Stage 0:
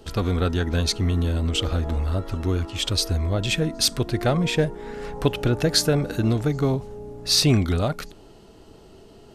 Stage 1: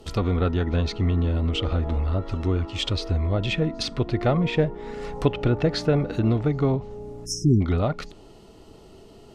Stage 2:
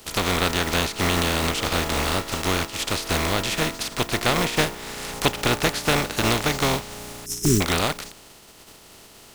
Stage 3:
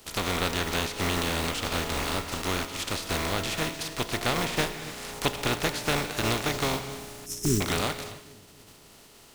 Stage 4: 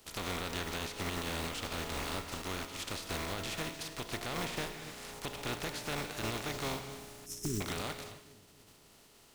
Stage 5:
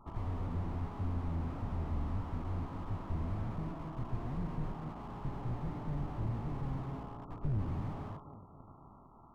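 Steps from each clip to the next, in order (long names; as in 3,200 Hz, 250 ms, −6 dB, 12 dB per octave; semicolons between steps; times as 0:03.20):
time-frequency box erased 0:07.25–0:07.61, 410–5,100 Hz; treble cut that deepens with the level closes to 2,600 Hz, closed at −19.5 dBFS; notch filter 1,600 Hz, Q 8.5
compressing power law on the bin magnitudes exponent 0.32
bucket-brigade delay 270 ms, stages 1,024, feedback 61%, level −22 dB; reverb whose tail is shaped and stops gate 320 ms flat, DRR 10 dB; level −6 dB
brickwall limiter −17 dBFS, peak gain reduction 8.5 dB; level −8 dB
lower of the sound and its delayed copy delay 1 ms; linear-phase brick-wall low-pass 1,400 Hz; slew-rate limiting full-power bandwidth 1.2 Hz; level +10 dB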